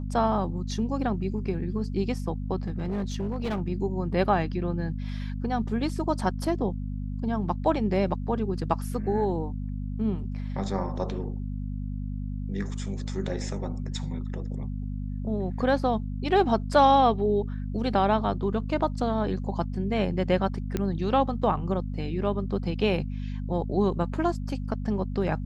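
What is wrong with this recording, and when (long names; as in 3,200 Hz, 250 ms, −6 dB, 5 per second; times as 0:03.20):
mains hum 50 Hz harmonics 5 −32 dBFS
0:02.66–0:03.62: clipping −25 dBFS
0:20.77: click −15 dBFS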